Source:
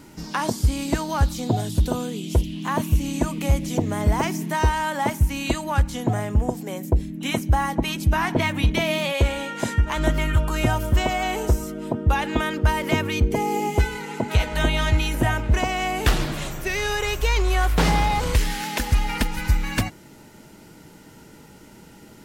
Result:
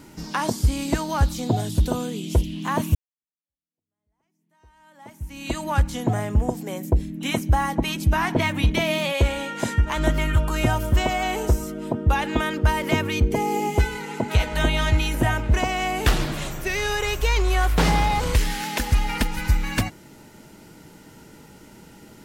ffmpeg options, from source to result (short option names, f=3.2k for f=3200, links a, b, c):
-filter_complex "[0:a]asplit=2[a][b];[a]atrim=end=2.95,asetpts=PTS-STARTPTS,afade=t=out:st=2.946:d=0.004:c=hsin[c];[b]atrim=start=2.95,asetpts=PTS-STARTPTS,afade=t=in:d=2.67:c=exp[d];[c][d]concat=n=2:v=0:a=1"